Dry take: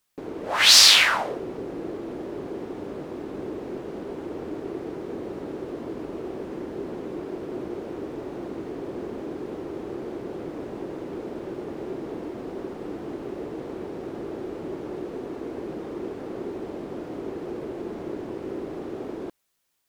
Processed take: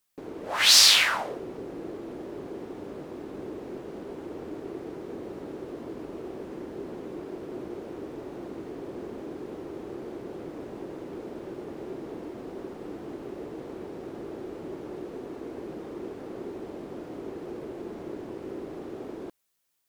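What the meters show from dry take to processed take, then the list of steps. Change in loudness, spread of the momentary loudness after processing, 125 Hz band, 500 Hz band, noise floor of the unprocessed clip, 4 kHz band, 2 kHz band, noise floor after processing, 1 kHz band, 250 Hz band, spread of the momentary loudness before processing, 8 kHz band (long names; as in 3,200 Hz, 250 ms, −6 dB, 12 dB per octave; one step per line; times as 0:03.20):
−3.0 dB, 4 LU, −4.5 dB, −4.5 dB, −38 dBFS, −3.5 dB, −4.0 dB, −42 dBFS, −4.5 dB, −4.5 dB, 4 LU, can't be measured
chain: high-shelf EQ 7,100 Hz +4.5 dB
level −4.5 dB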